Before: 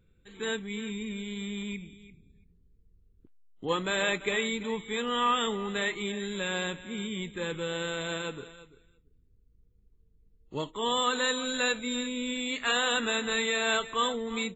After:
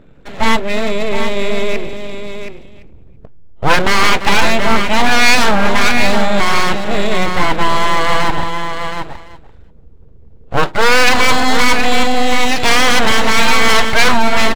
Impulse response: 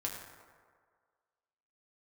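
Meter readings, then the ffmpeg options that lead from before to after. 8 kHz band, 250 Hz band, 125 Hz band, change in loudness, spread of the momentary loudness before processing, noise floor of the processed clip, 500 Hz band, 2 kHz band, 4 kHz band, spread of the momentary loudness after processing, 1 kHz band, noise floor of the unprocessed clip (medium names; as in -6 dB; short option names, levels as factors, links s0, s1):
no reading, +15.0 dB, +18.5 dB, +16.5 dB, 10 LU, -39 dBFS, +15.0 dB, +18.0 dB, +15.0 dB, 12 LU, +19.5 dB, -65 dBFS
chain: -af "lowpass=f=1700:p=1,equalizer=f=740:t=o:w=1.8:g=6.5,aeval=exprs='abs(val(0))':c=same,aecho=1:1:722:0.355,apsyclip=15.8,volume=0.794"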